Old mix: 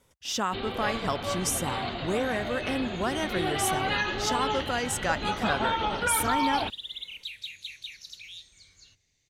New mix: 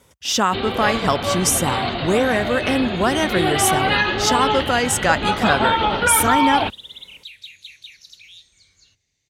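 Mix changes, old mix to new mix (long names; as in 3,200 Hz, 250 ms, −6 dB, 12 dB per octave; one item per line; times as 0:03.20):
speech +10.5 dB
first sound +9.5 dB
master: add high-pass filter 41 Hz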